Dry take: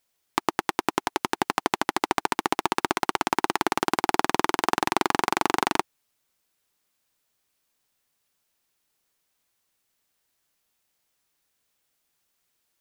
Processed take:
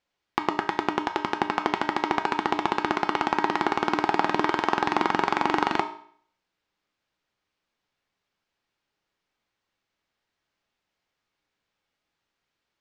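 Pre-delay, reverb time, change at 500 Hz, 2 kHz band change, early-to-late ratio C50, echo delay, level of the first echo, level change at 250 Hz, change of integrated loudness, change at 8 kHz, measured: 3 ms, 0.55 s, +0.5 dB, 0.0 dB, 11.5 dB, none, none, +1.0 dB, 0.0 dB, -13.0 dB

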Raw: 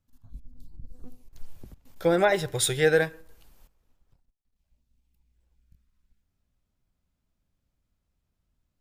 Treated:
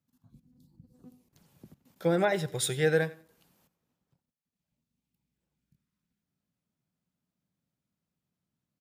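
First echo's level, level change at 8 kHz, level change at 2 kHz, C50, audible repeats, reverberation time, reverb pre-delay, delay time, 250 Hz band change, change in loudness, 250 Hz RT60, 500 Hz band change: -20.0 dB, -5.5 dB, -5.5 dB, none, 2, none, none, 90 ms, -2.0 dB, -4.5 dB, none, -4.5 dB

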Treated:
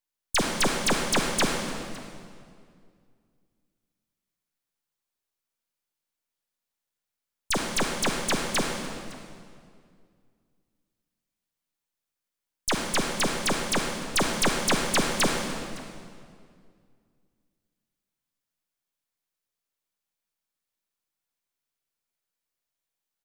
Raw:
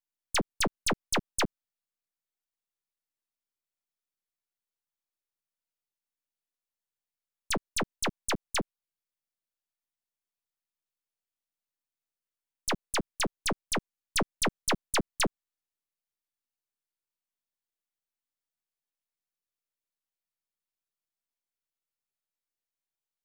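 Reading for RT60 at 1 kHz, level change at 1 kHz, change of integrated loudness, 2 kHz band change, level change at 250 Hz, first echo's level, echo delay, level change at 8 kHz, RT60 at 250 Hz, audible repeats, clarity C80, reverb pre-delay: 2.1 s, +6.0 dB, +5.0 dB, +6.0 dB, +6.5 dB, -21.0 dB, 0.562 s, +5.5 dB, 2.5 s, 1, 3.5 dB, 32 ms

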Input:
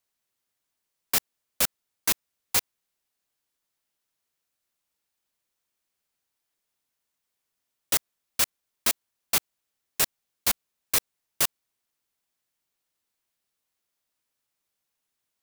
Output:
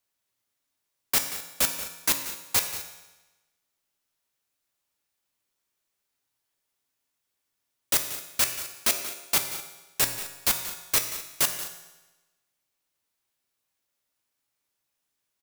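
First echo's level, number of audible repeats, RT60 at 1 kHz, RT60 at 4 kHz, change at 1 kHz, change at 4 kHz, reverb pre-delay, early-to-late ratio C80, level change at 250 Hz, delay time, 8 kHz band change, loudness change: -14.0 dB, 2, 1.1 s, 1.0 s, +1.0 dB, +1.0 dB, 3 ms, 8.5 dB, +1.0 dB, 0.182 s, +1.5 dB, +0.5 dB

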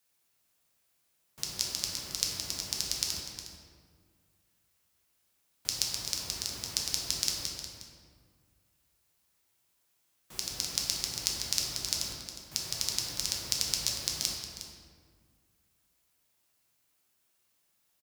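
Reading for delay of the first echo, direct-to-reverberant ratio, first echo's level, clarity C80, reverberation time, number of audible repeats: 0.36 s, -2.0 dB, -12.0 dB, 3.0 dB, 1.8 s, 1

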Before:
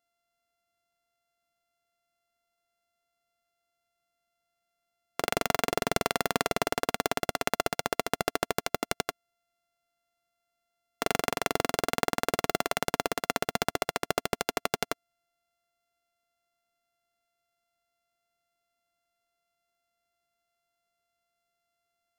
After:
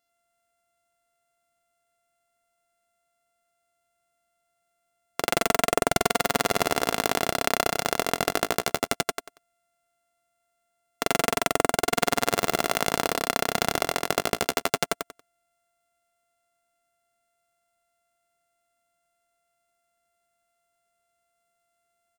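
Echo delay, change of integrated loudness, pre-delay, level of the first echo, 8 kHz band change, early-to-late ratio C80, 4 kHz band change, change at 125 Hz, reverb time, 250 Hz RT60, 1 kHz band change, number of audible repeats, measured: 93 ms, +5.0 dB, none, -4.5 dB, +6.5 dB, none, +5.0 dB, +4.0 dB, none, none, +4.5 dB, 3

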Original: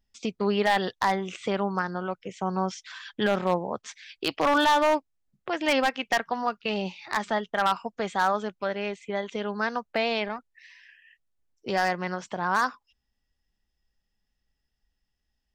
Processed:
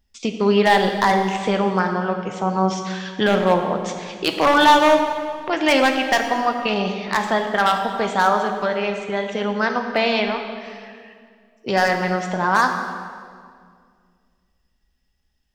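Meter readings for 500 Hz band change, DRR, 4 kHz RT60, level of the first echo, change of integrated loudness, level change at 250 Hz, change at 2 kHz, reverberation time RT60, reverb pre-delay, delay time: +8.0 dB, 4.0 dB, 1.6 s, none, +8.0 dB, +8.5 dB, +8.0 dB, 2.1 s, 6 ms, none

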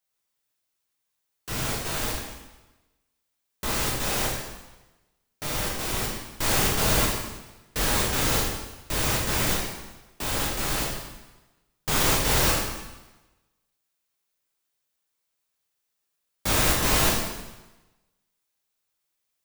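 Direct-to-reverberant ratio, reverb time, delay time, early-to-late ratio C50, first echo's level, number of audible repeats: -4.0 dB, 1.1 s, none, 1.5 dB, none, none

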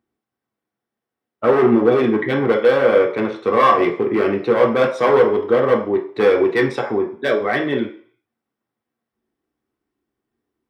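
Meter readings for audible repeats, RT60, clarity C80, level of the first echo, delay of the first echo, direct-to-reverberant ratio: none, 0.50 s, 13.5 dB, none, none, 0.5 dB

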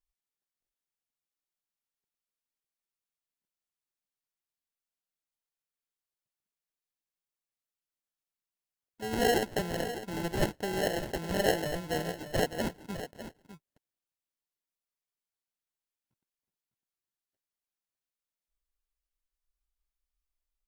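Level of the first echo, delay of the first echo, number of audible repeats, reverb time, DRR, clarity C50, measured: -11.5 dB, 0.604 s, 1, none, none, none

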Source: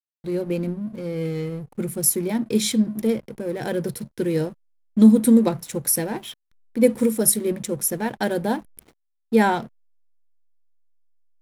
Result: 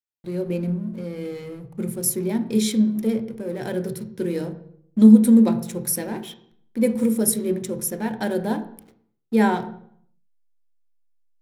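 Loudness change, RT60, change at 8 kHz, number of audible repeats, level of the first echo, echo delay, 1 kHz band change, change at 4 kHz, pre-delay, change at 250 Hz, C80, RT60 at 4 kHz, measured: +0.5 dB, 0.65 s, -3.5 dB, none, none, none, -2.5 dB, -3.0 dB, 3 ms, +1.5 dB, 16.0 dB, 0.55 s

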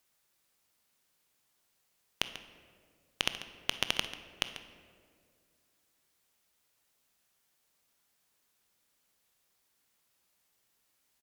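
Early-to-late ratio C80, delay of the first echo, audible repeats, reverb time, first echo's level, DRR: 10.5 dB, 0.141 s, 1, 2.1 s, -14.0 dB, 8.5 dB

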